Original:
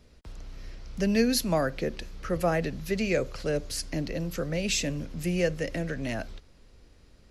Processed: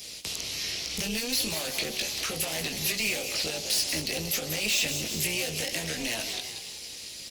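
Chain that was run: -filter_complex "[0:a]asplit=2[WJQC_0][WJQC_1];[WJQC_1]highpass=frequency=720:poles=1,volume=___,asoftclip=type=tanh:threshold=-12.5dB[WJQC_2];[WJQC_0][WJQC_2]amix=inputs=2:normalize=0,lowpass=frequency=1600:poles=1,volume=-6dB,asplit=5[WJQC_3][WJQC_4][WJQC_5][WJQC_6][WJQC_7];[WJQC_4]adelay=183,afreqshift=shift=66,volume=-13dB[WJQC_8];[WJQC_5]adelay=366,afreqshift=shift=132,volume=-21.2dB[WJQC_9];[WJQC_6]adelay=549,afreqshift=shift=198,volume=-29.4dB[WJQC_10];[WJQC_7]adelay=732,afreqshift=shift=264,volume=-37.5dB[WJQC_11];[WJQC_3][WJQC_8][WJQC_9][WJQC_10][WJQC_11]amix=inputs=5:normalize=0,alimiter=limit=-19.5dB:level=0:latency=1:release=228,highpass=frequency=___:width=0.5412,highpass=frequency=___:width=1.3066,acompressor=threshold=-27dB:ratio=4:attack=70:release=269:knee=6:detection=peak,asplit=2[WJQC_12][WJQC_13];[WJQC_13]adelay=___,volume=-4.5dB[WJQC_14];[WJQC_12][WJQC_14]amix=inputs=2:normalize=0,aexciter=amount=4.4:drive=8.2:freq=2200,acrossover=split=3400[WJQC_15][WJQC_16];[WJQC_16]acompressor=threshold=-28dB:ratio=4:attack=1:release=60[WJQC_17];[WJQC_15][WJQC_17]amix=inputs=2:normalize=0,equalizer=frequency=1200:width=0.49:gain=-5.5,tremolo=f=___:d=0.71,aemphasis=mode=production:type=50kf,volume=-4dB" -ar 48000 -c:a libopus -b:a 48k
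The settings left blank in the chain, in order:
28dB, 55, 55, 19, 240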